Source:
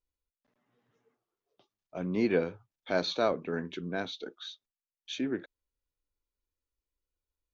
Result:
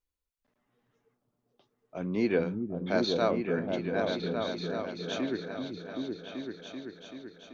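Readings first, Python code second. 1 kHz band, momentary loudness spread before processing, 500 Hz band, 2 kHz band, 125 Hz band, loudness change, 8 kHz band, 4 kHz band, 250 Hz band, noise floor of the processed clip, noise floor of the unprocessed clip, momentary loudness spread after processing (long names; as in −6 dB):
+2.0 dB, 15 LU, +3.0 dB, +1.5 dB, +4.5 dB, +1.0 dB, can't be measured, +1.0 dB, +3.5 dB, −84 dBFS, below −85 dBFS, 15 LU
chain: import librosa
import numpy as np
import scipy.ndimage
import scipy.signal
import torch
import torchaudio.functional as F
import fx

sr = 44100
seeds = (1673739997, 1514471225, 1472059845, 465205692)

y = fx.echo_opening(x, sr, ms=385, hz=200, octaves=2, feedback_pct=70, wet_db=0)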